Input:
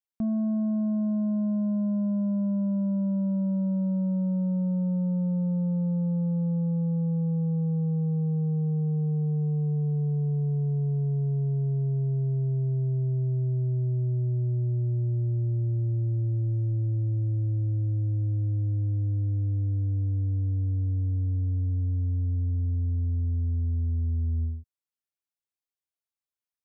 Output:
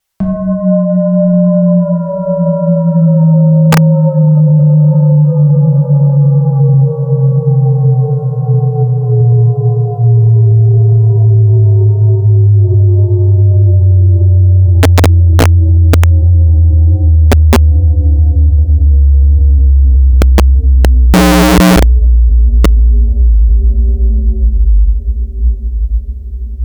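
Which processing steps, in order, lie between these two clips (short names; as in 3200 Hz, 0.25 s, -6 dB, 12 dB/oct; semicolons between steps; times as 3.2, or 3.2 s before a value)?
flange 0.96 Hz, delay 6.5 ms, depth 4.6 ms, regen +42%; vibrato 0.84 Hz 16 cents; bell 270 Hz -15 dB 0.77 oct; frequency shift -32 Hz; diffused feedback echo 1.098 s, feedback 60%, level -11.5 dB; reverb RT60 0.85 s, pre-delay 5 ms, DRR 0.5 dB; wrapped overs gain 18.5 dB; maximiser +27.5 dB; gain -1 dB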